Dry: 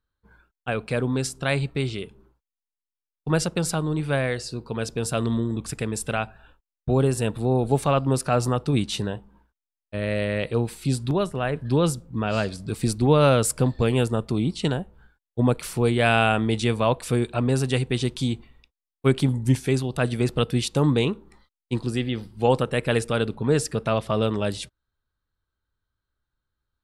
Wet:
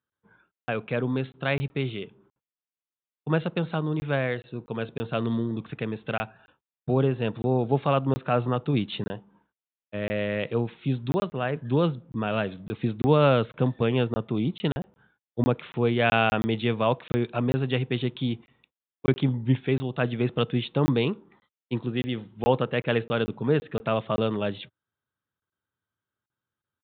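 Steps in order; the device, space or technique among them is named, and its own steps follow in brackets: call with lost packets (HPF 110 Hz 24 dB/oct; downsampling 8000 Hz; packet loss packets of 20 ms random); gain -2 dB

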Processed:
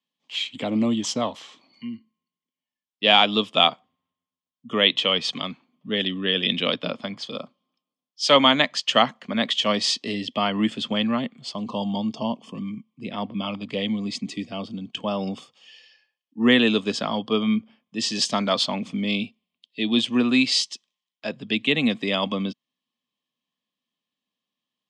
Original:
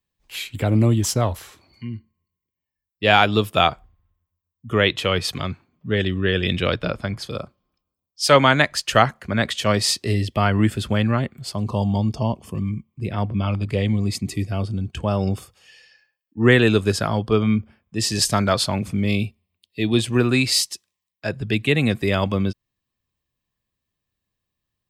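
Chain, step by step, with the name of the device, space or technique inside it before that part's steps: television speaker (speaker cabinet 190–6800 Hz, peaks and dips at 250 Hz +6 dB, 370 Hz -7 dB, 1100 Hz +3 dB, 1500 Hz -8 dB, 3200 Hz +10 dB); gain -2.5 dB

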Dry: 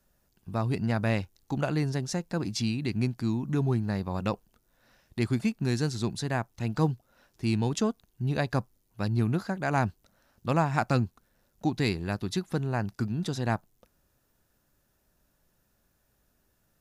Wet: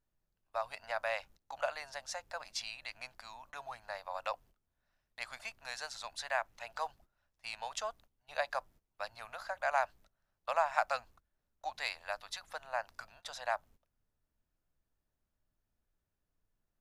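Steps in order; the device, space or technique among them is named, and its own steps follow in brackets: elliptic high-pass 590 Hz, stop band 40 dB; car interior (bell 140 Hz +9 dB; high shelf 4900 Hz -5 dB; brown noise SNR 24 dB); gate -55 dBFS, range -16 dB; 6.03–6.64 dynamic EQ 2300 Hz, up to +4 dB, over -49 dBFS, Q 1.1; gain -2 dB

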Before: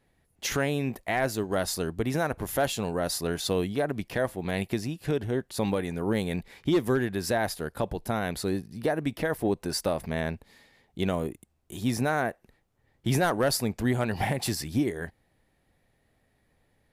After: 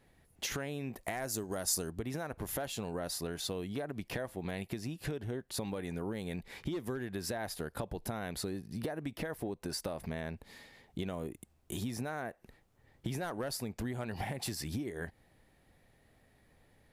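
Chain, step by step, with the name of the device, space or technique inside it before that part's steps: serial compression, leveller first (compressor 1.5:1, threshold -35 dBFS, peak gain reduction 5.5 dB; compressor 6:1, threshold -38 dBFS, peak gain reduction 12 dB); 1.04–1.91 resonant high shelf 4800 Hz +8 dB, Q 1.5; gain +3 dB

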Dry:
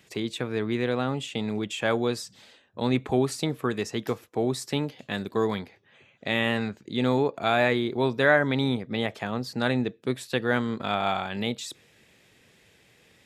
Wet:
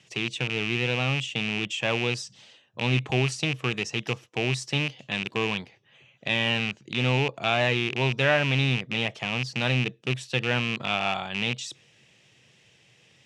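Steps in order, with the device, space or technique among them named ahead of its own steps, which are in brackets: car door speaker with a rattle (rattling part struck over -33 dBFS, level -18 dBFS; speaker cabinet 85–9200 Hz, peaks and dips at 130 Hz +9 dB, 260 Hz -4 dB, 420 Hz -3 dB, 1500 Hz -3 dB, 2900 Hz +8 dB, 5800 Hz +7 dB); gain -2 dB

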